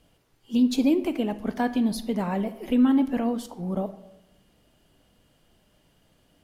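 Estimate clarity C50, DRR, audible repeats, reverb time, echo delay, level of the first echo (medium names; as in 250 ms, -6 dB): 14.0 dB, 12.0 dB, no echo, 0.85 s, no echo, no echo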